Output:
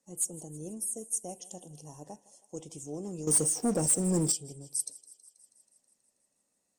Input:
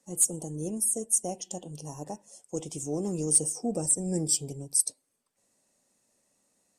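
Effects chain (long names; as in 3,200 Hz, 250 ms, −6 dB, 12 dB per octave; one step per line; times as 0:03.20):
on a send: feedback echo with a high-pass in the loop 161 ms, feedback 69%, high-pass 380 Hz, level −19 dB
0:03.27–0:04.32: on the sum: leveller curve on the samples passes 3
level −7.5 dB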